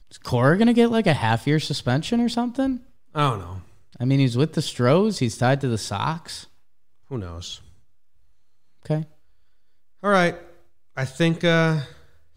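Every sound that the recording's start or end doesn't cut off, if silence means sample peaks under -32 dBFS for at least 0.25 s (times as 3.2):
3.15–3.6
3.96–6.42
7.12–7.55
8.86–9.04
10.03–10.38
10.97–11.84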